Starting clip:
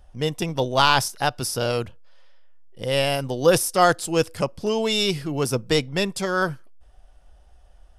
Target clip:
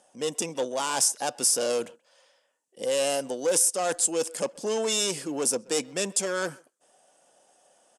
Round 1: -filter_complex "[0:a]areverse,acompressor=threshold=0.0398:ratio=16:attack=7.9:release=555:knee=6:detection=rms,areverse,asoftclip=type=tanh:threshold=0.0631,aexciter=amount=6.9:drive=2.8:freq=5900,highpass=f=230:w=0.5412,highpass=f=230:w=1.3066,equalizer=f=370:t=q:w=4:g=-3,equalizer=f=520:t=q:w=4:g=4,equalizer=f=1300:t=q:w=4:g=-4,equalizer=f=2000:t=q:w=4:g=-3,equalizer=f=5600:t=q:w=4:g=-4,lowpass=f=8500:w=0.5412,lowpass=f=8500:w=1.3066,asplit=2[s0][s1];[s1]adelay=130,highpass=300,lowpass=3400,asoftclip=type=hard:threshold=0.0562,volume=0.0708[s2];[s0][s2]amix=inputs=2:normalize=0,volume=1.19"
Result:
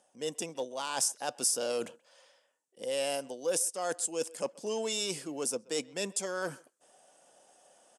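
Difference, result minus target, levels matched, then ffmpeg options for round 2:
compression: peak gain reduction +11 dB
-filter_complex "[0:a]areverse,acompressor=threshold=0.158:ratio=16:attack=7.9:release=555:knee=6:detection=rms,areverse,asoftclip=type=tanh:threshold=0.0631,aexciter=amount=6.9:drive=2.8:freq=5900,highpass=f=230:w=0.5412,highpass=f=230:w=1.3066,equalizer=f=370:t=q:w=4:g=-3,equalizer=f=520:t=q:w=4:g=4,equalizer=f=1300:t=q:w=4:g=-4,equalizer=f=2000:t=q:w=4:g=-3,equalizer=f=5600:t=q:w=4:g=-4,lowpass=f=8500:w=0.5412,lowpass=f=8500:w=1.3066,asplit=2[s0][s1];[s1]adelay=130,highpass=300,lowpass=3400,asoftclip=type=hard:threshold=0.0562,volume=0.0708[s2];[s0][s2]amix=inputs=2:normalize=0,volume=1.19"

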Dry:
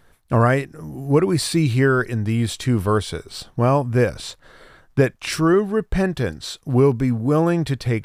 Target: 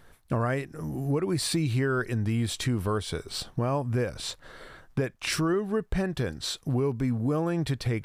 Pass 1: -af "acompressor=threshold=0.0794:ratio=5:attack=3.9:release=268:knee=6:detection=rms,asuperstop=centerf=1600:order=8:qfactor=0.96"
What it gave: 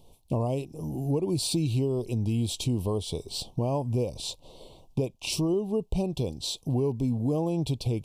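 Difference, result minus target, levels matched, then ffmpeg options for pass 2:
2 kHz band -13.0 dB
-af "acompressor=threshold=0.0794:ratio=5:attack=3.9:release=268:knee=6:detection=rms"

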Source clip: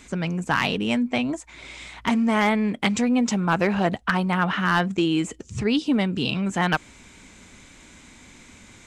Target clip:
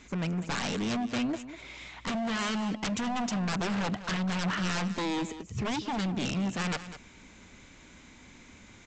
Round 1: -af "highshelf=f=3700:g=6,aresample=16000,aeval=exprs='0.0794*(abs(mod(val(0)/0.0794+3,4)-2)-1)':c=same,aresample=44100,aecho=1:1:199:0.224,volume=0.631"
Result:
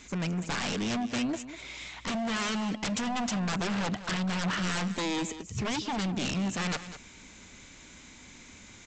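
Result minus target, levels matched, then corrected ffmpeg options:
8 kHz band +3.0 dB
-af "highshelf=f=3700:g=-3.5,aresample=16000,aeval=exprs='0.0794*(abs(mod(val(0)/0.0794+3,4)-2)-1)':c=same,aresample=44100,aecho=1:1:199:0.224,volume=0.631"

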